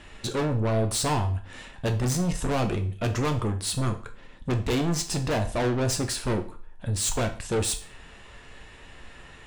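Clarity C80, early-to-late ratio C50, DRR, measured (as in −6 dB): 17.0 dB, 12.5 dB, 5.0 dB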